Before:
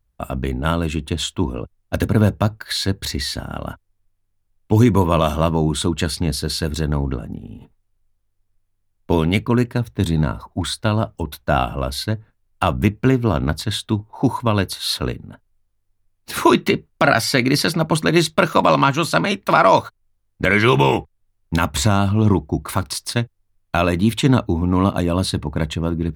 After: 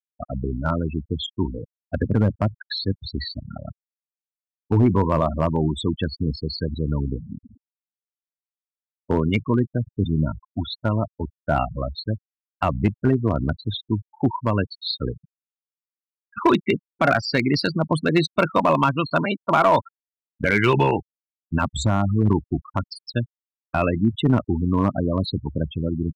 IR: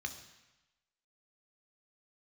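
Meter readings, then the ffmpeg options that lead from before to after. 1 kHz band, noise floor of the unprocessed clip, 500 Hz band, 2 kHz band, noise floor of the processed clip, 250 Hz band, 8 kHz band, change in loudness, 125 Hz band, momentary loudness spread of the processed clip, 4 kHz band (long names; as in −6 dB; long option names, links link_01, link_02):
−4.0 dB, −68 dBFS, −3.5 dB, −5.0 dB, below −85 dBFS, −3.5 dB, below −10 dB, −4.0 dB, −3.5 dB, 11 LU, −7.0 dB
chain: -filter_complex "[0:a]afftfilt=real='re*gte(hypot(re,im),0.178)':imag='im*gte(hypot(re,im),0.178)':win_size=1024:overlap=0.75,acrossover=split=4700[link_01][link_02];[link_01]volume=6.5dB,asoftclip=hard,volume=-6.5dB[link_03];[link_03][link_02]amix=inputs=2:normalize=0,volume=-3dB"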